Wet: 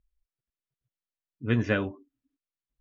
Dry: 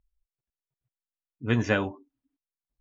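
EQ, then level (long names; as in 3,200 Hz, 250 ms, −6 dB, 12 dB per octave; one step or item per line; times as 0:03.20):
high-frequency loss of the air 150 metres
parametric band 850 Hz −9.5 dB 0.53 octaves
0.0 dB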